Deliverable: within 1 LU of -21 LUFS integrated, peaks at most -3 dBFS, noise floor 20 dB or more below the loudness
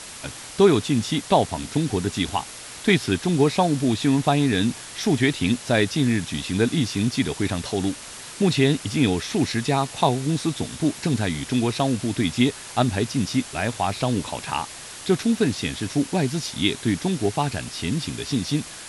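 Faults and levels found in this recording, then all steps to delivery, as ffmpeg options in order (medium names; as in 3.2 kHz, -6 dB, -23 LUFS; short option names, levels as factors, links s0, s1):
noise floor -39 dBFS; noise floor target -43 dBFS; loudness -23.0 LUFS; peak level -4.0 dBFS; loudness target -21.0 LUFS
-> -af "afftdn=nr=6:nf=-39"
-af "volume=1.26,alimiter=limit=0.708:level=0:latency=1"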